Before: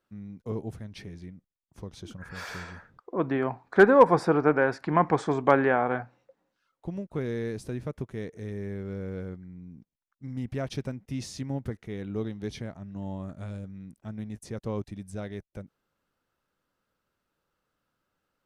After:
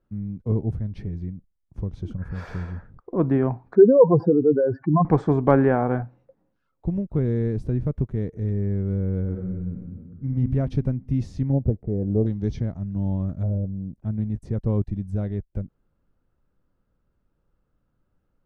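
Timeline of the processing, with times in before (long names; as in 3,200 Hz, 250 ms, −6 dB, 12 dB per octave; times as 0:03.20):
0:03.75–0:05.05: expanding power law on the bin magnitudes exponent 3.2
0:09.22–0:10.34: thrown reverb, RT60 1.9 s, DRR −1 dB
0:11.52–0:13.95: auto-filter low-pass square 0.16 Hz → 0.92 Hz 620–6,200 Hz
whole clip: spectral tilt −4.5 dB per octave; level −1 dB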